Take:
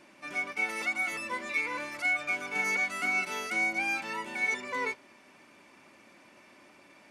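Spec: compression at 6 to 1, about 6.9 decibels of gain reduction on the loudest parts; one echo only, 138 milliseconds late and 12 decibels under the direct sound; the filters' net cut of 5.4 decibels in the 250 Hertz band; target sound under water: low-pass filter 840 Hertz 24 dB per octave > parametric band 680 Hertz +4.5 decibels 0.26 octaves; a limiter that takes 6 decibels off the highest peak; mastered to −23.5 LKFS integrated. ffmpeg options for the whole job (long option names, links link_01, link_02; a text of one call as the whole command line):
ffmpeg -i in.wav -af "equalizer=frequency=250:width_type=o:gain=-7.5,acompressor=threshold=-33dB:ratio=6,alimiter=level_in=6.5dB:limit=-24dB:level=0:latency=1,volume=-6.5dB,lowpass=frequency=840:width=0.5412,lowpass=frequency=840:width=1.3066,equalizer=frequency=680:width_type=o:width=0.26:gain=4.5,aecho=1:1:138:0.251,volume=25dB" out.wav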